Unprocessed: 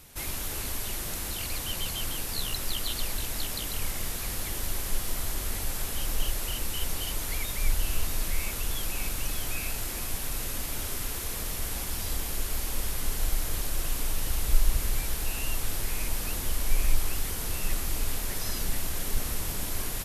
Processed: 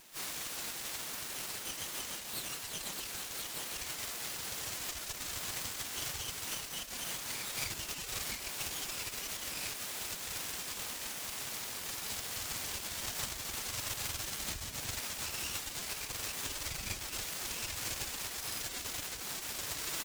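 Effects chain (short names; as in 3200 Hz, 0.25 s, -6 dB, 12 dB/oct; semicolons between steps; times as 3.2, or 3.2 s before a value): steep low-pass 8100 Hz 36 dB/oct; feedback echo 0.106 s, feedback 17%, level -15 dB; compressor 10:1, threshold -25 dBFS, peak gain reduction 13 dB; tilt shelf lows -4 dB, about 1300 Hz; speakerphone echo 0.18 s, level -30 dB; harmoniser +12 st -3 dB; vocal rider 0.5 s; formant-preserving pitch shift +10.5 st; low shelf 360 Hz -5 dB; full-wave rectifier; HPF 88 Hz 6 dB/oct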